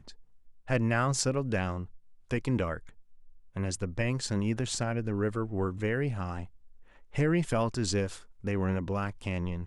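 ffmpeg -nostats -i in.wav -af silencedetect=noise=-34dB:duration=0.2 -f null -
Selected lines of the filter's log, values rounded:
silence_start: 0.00
silence_end: 0.69 | silence_duration: 0.69
silence_start: 1.83
silence_end: 2.31 | silence_duration: 0.48
silence_start: 2.77
silence_end: 3.56 | silence_duration: 0.79
silence_start: 6.43
silence_end: 7.15 | silence_duration: 0.72
silence_start: 8.14
silence_end: 8.44 | silence_duration: 0.30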